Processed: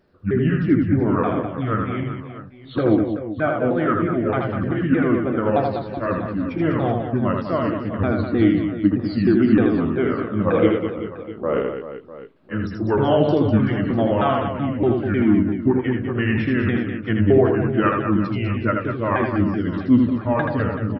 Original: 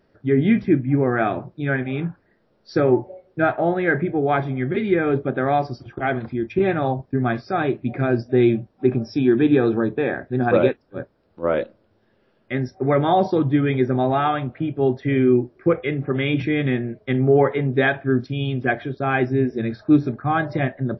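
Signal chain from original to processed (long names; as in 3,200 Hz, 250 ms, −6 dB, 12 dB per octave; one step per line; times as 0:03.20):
pitch shifter swept by a sawtooth −6 semitones, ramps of 309 ms
reverse bouncing-ball delay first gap 80 ms, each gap 1.5×, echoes 5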